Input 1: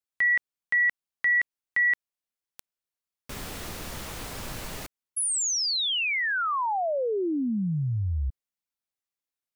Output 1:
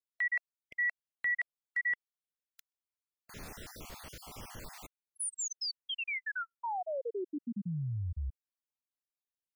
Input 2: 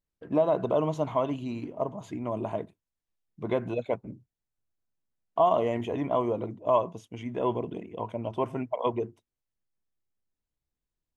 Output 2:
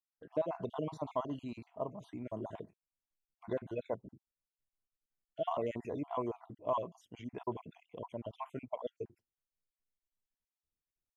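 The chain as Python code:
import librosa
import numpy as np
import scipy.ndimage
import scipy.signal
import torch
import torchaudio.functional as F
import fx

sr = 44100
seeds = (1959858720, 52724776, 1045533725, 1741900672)

y = fx.spec_dropout(x, sr, seeds[0], share_pct=44)
y = y * 10.0 ** (-8.0 / 20.0)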